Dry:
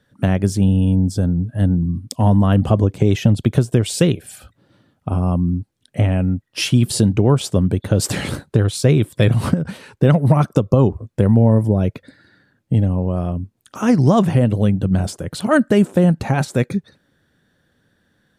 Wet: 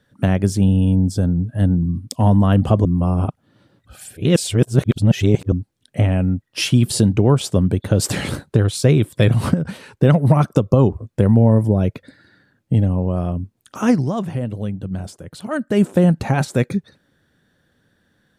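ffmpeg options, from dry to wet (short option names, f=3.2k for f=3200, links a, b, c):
-filter_complex "[0:a]asplit=5[a][b][c][d][e];[a]atrim=end=2.852[f];[b]atrim=start=2.848:end=5.522,asetpts=PTS-STARTPTS,areverse[g];[c]atrim=start=5.518:end=14.06,asetpts=PTS-STARTPTS,afade=t=out:st=8.382:d=0.16:silence=0.354813[h];[d]atrim=start=14.06:end=15.67,asetpts=PTS-STARTPTS,volume=-9dB[i];[e]atrim=start=15.67,asetpts=PTS-STARTPTS,afade=t=in:d=0.16:silence=0.354813[j];[f][g]acrossfade=d=0.004:c1=hsin:c2=hsin[k];[h][i][j]concat=n=3:v=0:a=1[l];[k][l]acrossfade=d=0.004:c1=hsin:c2=hsin"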